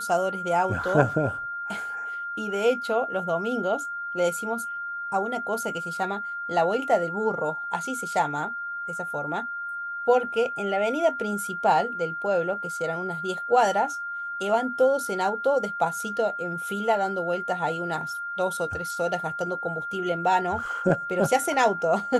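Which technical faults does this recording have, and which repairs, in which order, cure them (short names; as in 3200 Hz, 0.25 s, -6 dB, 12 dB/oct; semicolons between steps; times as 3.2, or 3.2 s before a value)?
tone 1400 Hz -30 dBFS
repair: notch 1400 Hz, Q 30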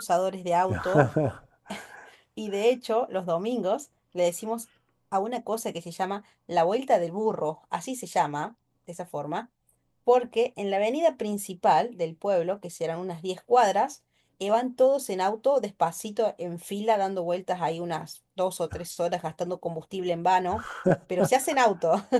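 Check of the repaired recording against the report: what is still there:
none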